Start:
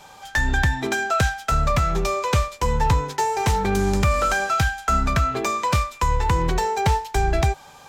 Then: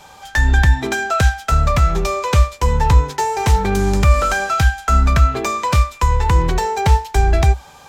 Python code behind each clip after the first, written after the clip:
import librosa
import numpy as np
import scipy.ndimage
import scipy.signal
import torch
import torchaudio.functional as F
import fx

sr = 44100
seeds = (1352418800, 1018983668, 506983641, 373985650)

y = fx.peak_eq(x, sr, hz=63.0, db=10.0, octaves=0.5)
y = F.gain(torch.from_numpy(y), 3.0).numpy()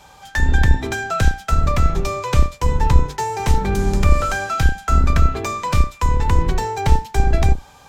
y = fx.octave_divider(x, sr, octaves=2, level_db=1.0)
y = F.gain(torch.from_numpy(y), -4.0).numpy()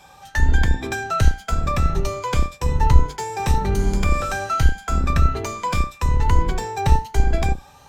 y = fx.spec_ripple(x, sr, per_octave=1.8, drift_hz=1.2, depth_db=8)
y = F.gain(torch.from_numpy(y), -3.0).numpy()